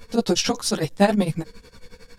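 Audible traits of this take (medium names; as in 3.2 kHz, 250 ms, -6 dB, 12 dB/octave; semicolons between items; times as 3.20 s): tremolo triangle 11 Hz, depth 100%; a shimmering, thickened sound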